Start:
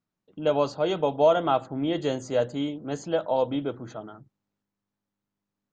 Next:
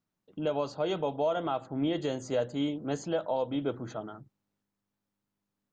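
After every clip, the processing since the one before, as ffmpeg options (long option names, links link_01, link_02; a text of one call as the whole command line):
ffmpeg -i in.wav -af "alimiter=limit=-20dB:level=0:latency=1:release=329" out.wav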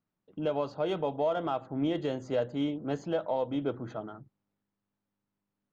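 ffmpeg -i in.wav -af "adynamicsmooth=sensitivity=3.5:basefreq=3700" out.wav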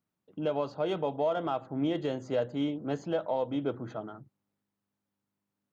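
ffmpeg -i in.wav -af "highpass=61" out.wav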